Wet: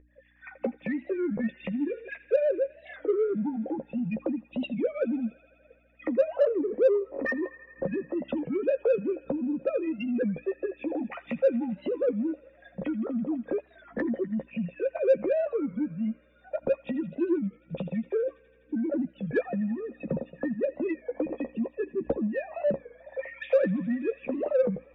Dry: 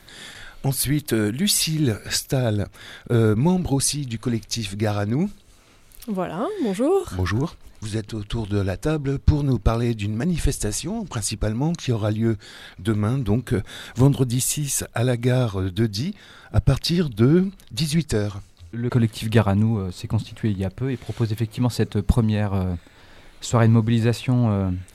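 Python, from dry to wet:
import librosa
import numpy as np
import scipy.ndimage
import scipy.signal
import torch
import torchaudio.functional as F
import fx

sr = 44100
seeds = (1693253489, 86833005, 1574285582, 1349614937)

p1 = fx.sine_speech(x, sr)
p2 = fx.recorder_agc(p1, sr, target_db=-12.0, rise_db_per_s=31.0, max_gain_db=30)
p3 = fx.low_shelf(p2, sr, hz=230.0, db=10.5)
p4 = fx.add_hum(p3, sr, base_hz=60, snr_db=14)
p5 = fx.noise_reduce_blind(p4, sr, reduce_db=19)
p6 = fx.formant_cascade(p5, sr, vowel='e')
p7 = fx.doubler(p6, sr, ms=13.0, db=-8.5)
p8 = fx.echo_wet_highpass(p7, sr, ms=83, feedback_pct=84, hz=1400.0, wet_db=-16.5)
p9 = 10.0 ** (-24.5 / 20.0) * np.tanh(p8 / 10.0 ** (-24.5 / 20.0))
p10 = p8 + (p9 * librosa.db_to_amplitude(-5.0))
p11 = fx.record_warp(p10, sr, rpm=33.33, depth_cents=160.0)
y = p11 * librosa.db_to_amplitude(-3.5)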